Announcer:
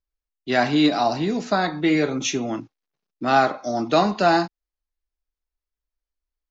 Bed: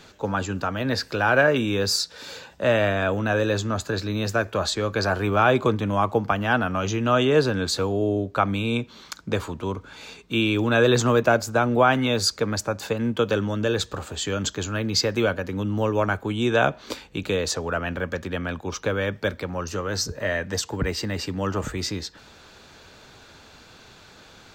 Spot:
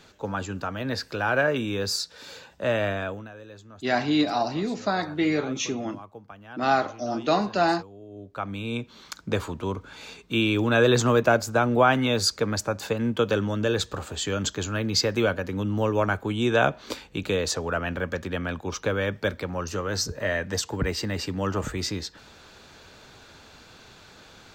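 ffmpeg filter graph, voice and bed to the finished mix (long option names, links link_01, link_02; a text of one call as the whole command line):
ffmpeg -i stem1.wav -i stem2.wav -filter_complex "[0:a]adelay=3350,volume=-4.5dB[link_01];[1:a]volume=16.5dB,afade=type=out:start_time=2.92:duration=0.39:silence=0.133352,afade=type=in:start_time=8.09:duration=1.17:silence=0.0891251[link_02];[link_01][link_02]amix=inputs=2:normalize=0" out.wav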